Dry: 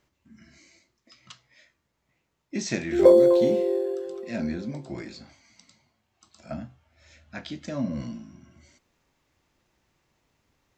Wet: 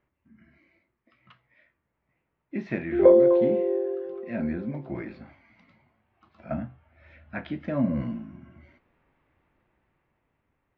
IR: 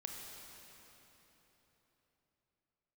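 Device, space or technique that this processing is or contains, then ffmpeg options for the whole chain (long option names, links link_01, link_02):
action camera in a waterproof case: -af "lowpass=frequency=2400:width=0.5412,lowpass=frequency=2400:width=1.3066,dynaudnorm=framelen=290:gausssize=11:maxgain=8dB,volume=-4dB" -ar 24000 -c:a aac -b:a 48k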